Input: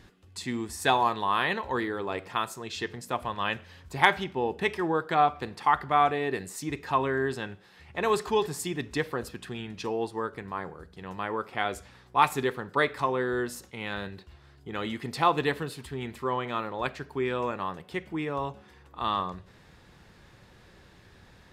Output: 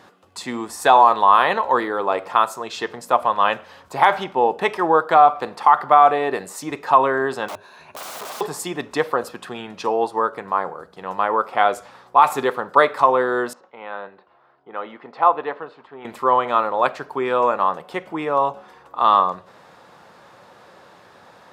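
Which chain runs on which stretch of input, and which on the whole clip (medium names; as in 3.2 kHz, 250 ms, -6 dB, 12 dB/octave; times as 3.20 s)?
7.48–8.41 s: rippled EQ curve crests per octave 1.5, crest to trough 13 dB + compression 3:1, threshold -29 dBFS + integer overflow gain 36.5 dB
13.53–16.05 s: high-pass 730 Hz 6 dB/octave + tape spacing loss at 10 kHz 44 dB
whole clip: high-pass 200 Hz 12 dB/octave; high-order bell 830 Hz +9.5 dB; loudness maximiser +6 dB; trim -1 dB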